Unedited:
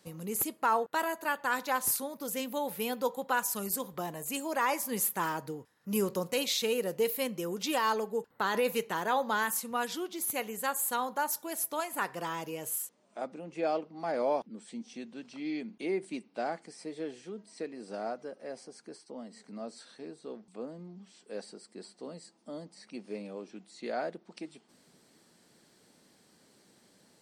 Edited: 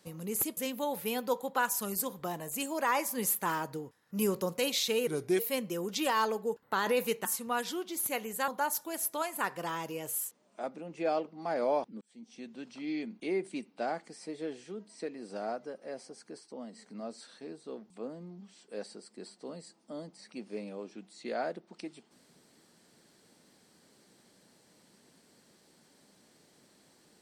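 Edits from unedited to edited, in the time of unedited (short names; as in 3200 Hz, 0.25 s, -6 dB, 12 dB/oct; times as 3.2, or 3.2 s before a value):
0.57–2.31 cut
6.81–7.07 speed 81%
8.93–9.49 cut
10.72–11.06 cut
14.59–15.16 fade in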